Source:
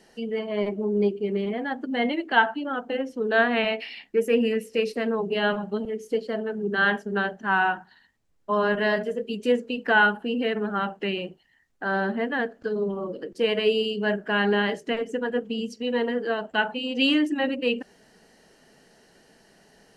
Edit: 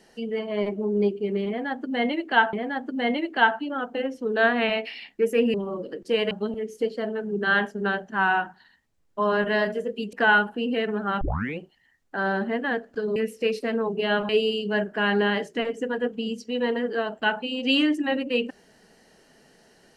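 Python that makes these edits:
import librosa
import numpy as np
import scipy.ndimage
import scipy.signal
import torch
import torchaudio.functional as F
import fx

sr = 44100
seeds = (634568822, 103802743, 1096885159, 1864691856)

y = fx.edit(x, sr, fx.repeat(start_s=1.48, length_s=1.05, count=2),
    fx.swap(start_s=4.49, length_s=1.13, other_s=12.84, other_length_s=0.77),
    fx.cut(start_s=9.44, length_s=0.37),
    fx.tape_start(start_s=10.89, length_s=0.37), tone=tone)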